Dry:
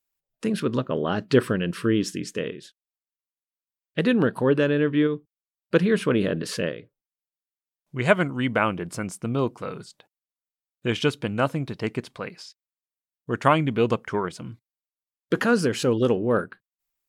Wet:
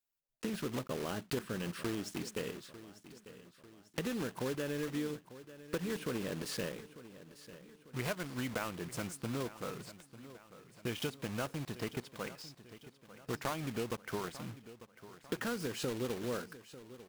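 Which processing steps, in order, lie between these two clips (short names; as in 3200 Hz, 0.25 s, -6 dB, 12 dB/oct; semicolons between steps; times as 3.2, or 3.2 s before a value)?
block floating point 3-bit; compressor 6:1, threshold -26 dBFS, peak gain reduction 14.5 dB; on a send: feedback echo 0.896 s, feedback 50%, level -15.5 dB; on the sum: gain -8 dB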